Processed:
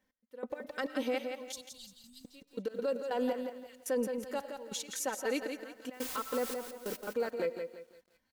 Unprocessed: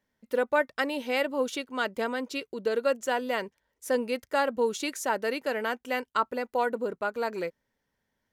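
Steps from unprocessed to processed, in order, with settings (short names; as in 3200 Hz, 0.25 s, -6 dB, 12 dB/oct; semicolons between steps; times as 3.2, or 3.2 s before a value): thin delay 0.355 s, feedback 36%, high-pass 3300 Hz, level -18 dB; 5.92–6.95 added noise white -41 dBFS; step gate "x...x.xx.x" 140 bpm -24 dB; in parallel at -5 dB: soft clip -29 dBFS, distortion -7 dB; 1.52–2.25 on the sum: inverse Chebyshev band-stop 380–1700 Hz, stop band 60 dB; dynamic EQ 430 Hz, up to +4 dB, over -37 dBFS, Q 1.1; on a send at -22.5 dB: reverb RT60 0.60 s, pre-delay 60 ms; on the sum: limiter -22.5 dBFS, peak gain reduction 11.5 dB; comb 3.9 ms, depth 52%; lo-fi delay 0.17 s, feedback 35%, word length 10-bit, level -6.5 dB; gain -5 dB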